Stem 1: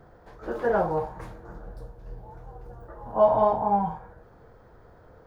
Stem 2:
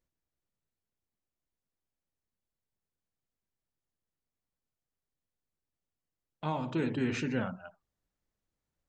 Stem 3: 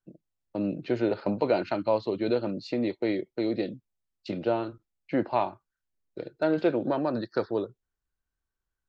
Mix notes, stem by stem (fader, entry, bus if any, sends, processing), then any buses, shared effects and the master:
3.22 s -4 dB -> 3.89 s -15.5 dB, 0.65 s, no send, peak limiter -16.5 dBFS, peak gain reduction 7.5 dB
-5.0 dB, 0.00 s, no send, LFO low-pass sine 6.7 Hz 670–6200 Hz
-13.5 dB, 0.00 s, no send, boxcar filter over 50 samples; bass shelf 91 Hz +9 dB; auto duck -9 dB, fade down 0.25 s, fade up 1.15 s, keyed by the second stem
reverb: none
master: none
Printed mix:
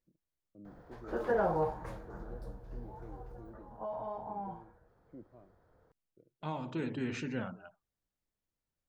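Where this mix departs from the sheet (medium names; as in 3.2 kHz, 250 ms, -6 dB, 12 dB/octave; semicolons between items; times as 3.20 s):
stem 2: missing LFO low-pass sine 6.7 Hz 670–6200 Hz; stem 3 -13.5 dB -> -23.5 dB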